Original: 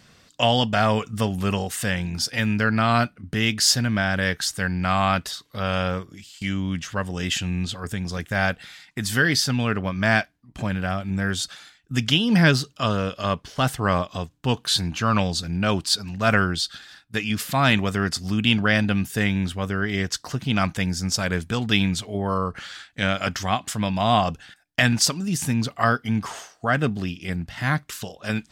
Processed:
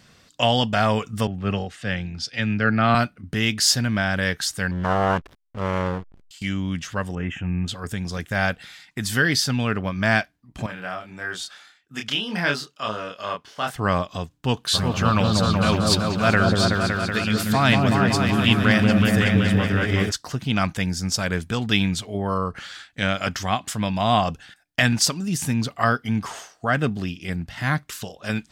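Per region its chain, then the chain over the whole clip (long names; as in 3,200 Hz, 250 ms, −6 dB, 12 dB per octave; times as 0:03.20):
0:01.27–0:02.95: low-pass filter 4,000 Hz + notch filter 980 Hz, Q 5.9 + multiband upward and downward expander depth 70%
0:04.71–0:06.31: Savitzky-Golay smoothing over 25 samples + slack as between gear wheels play −29.5 dBFS + highs frequency-modulated by the lows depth 0.42 ms
0:07.15–0:07.68: Butterworth band-reject 4,400 Hz, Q 0.9 + high-frequency loss of the air 230 metres + double-tracking delay 12 ms −13 dB
0:10.66–0:13.76: high-pass filter 880 Hz 6 dB per octave + high-shelf EQ 2,700 Hz −8.5 dB + double-tracking delay 28 ms −3 dB
0:14.73–0:20.10: surface crackle 360 per second −42 dBFS + echo whose low-pass opens from repeat to repeat 188 ms, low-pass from 750 Hz, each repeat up 1 octave, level 0 dB
whole clip: no processing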